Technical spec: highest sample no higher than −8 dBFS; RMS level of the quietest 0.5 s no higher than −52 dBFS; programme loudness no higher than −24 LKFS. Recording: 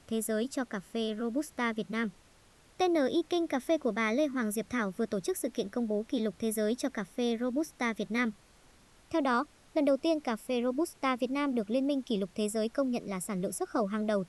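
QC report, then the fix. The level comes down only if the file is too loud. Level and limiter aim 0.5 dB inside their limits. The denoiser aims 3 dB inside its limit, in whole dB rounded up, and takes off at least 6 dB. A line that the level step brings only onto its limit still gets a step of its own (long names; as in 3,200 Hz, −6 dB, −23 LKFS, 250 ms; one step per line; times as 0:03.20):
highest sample −16.0 dBFS: in spec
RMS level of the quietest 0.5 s −61 dBFS: in spec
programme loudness −32.0 LKFS: in spec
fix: no processing needed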